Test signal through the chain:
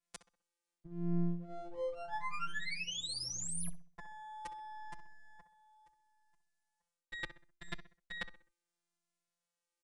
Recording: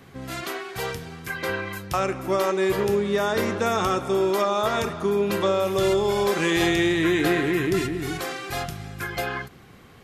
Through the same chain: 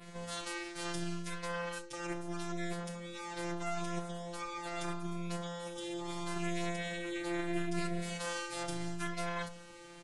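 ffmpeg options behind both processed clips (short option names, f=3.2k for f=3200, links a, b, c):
-filter_complex "[0:a]aemphasis=mode=production:type=cd,bandreject=f=401.9:t=h:w=4,bandreject=f=803.8:t=h:w=4,bandreject=f=1.2057k:t=h:w=4,bandreject=f=1.6076k:t=h:w=4,bandreject=f=2.0095k:t=h:w=4,bandreject=f=2.4114k:t=h:w=4,bandreject=f=2.8133k:t=h:w=4,bandreject=f=3.2152k:t=h:w=4,bandreject=f=3.6171k:t=h:w=4,bandreject=f=4.019k:t=h:w=4,bandreject=f=4.4209k:t=h:w=4,bandreject=f=4.8228k:t=h:w=4,bandreject=f=5.2247k:t=h:w=4,bandreject=f=5.6266k:t=h:w=4,bandreject=f=6.0285k:t=h:w=4,adynamicequalizer=threshold=0.00631:dfrequency=6000:dqfactor=2.2:tfrequency=6000:tqfactor=2.2:attack=5:release=100:ratio=0.375:range=2:mode=cutabove:tftype=bell,areverse,acompressor=threshold=-32dB:ratio=20,areverse,afftfilt=real='hypot(re,im)*cos(PI*b)':imag='0':win_size=1024:overlap=0.75,aeval=exprs='max(val(0),0)':c=same,asplit=2[a][b];[b]adelay=64,lowpass=f=2.7k:p=1,volume=-12.5dB,asplit=2[c][d];[d]adelay=64,lowpass=f=2.7k:p=1,volume=0.4,asplit=2[e][f];[f]adelay=64,lowpass=f=2.7k:p=1,volume=0.4,asplit=2[g][h];[h]adelay=64,lowpass=f=2.7k:p=1,volume=0.4[i];[c][e][g][i]amix=inputs=4:normalize=0[j];[a][j]amix=inputs=2:normalize=0,aresample=22050,aresample=44100,asplit=2[k][l];[l]adelay=2.4,afreqshift=0.76[m];[k][m]amix=inputs=2:normalize=1,volume=4.5dB"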